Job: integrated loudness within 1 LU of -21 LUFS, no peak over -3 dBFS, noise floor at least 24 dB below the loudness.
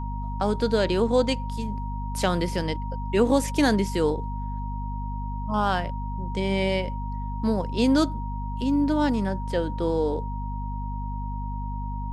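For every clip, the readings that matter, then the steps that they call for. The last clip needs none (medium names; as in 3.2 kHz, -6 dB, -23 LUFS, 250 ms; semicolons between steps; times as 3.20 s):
hum 50 Hz; highest harmonic 250 Hz; hum level -28 dBFS; steady tone 940 Hz; tone level -36 dBFS; loudness -26.5 LUFS; peak level -8.0 dBFS; loudness target -21.0 LUFS
-> hum notches 50/100/150/200/250 Hz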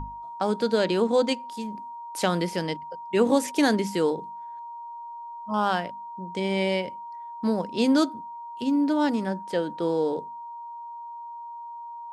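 hum not found; steady tone 940 Hz; tone level -36 dBFS
-> band-stop 940 Hz, Q 30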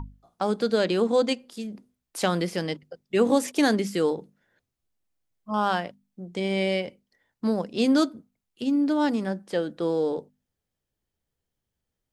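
steady tone not found; loudness -26.0 LUFS; peak level -8.5 dBFS; loudness target -21.0 LUFS
-> trim +5 dB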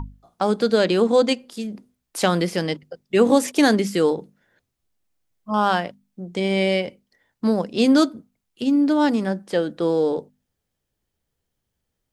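loudness -21.0 LUFS; peak level -3.5 dBFS; noise floor -79 dBFS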